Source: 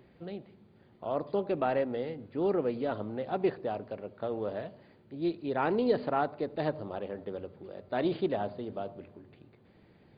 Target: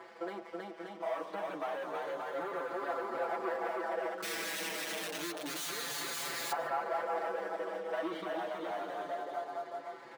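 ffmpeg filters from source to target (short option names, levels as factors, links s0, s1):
-filter_complex "[0:a]asuperstop=centerf=2600:order=8:qfactor=5.2,aecho=1:1:320|576|780.8|944.6|1076:0.631|0.398|0.251|0.158|0.1,asplit=2[s0][s1];[s1]highpass=f=720:p=1,volume=25.1,asoftclip=type=tanh:threshold=0.178[s2];[s0][s2]amix=inputs=2:normalize=0,lowpass=f=2600:p=1,volume=0.501,equalizer=f=1100:t=o:w=2:g=11.5,asettb=1/sr,asplit=3[s3][s4][s5];[s3]atrim=end=4.224[s6];[s4]atrim=start=4.22:end=6.52,asetpts=PTS-STARTPTS,afade=t=in:d=0.004:c=qsin,afade=t=out:st=2.296:d=0.004:c=qsin,aeval=exprs='(mod(5.96*val(0)+1,2)-1)/5.96':c=same[s7];[s5]atrim=start=6.516[s8];[s6][s7]acrossfade=d=0.004:c1=hsin:c2=qsin[s9];[s9][s8]acrossfade=d=0.004:c1=qsin:c2=hsin,aecho=1:1:154:0.106,acompressor=threshold=0.0282:ratio=2,aeval=exprs='sgn(val(0))*max(abs(val(0))-0.00596,0)':c=same,highpass=240,aecho=1:1:6:0.68,asplit=2[s10][s11];[s11]adelay=5.5,afreqshift=-0.29[s12];[s10][s12]amix=inputs=2:normalize=1,volume=0.376"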